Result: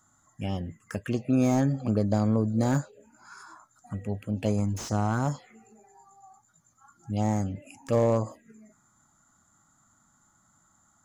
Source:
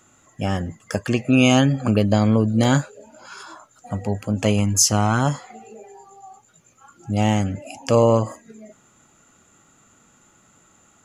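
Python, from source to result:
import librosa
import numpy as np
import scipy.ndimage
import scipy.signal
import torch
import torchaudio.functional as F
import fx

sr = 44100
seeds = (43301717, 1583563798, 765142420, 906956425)

y = fx.env_phaser(x, sr, low_hz=440.0, high_hz=2900.0, full_db=-14.5)
y = fx.slew_limit(y, sr, full_power_hz=160.0)
y = y * librosa.db_to_amplitude(-7.0)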